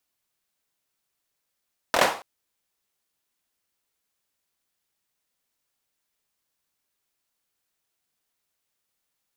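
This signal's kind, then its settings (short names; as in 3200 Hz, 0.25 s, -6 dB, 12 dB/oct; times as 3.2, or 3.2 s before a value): hand clap length 0.28 s, apart 24 ms, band 760 Hz, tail 0.38 s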